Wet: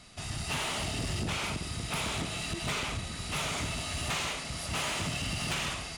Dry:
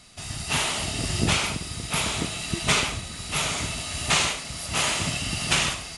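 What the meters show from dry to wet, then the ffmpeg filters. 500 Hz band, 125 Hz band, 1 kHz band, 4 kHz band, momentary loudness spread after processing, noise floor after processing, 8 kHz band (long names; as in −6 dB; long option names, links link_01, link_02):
−6.0 dB, −5.5 dB, −6.5 dB, −8.5 dB, 3 LU, −40 dBFS, −10.0 dB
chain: -af "highshelf=frequency=3900:gain=-6,acompressor=threshold=-26dB:ratio=6,asoftclip=type=tanh:threshold=-27dB"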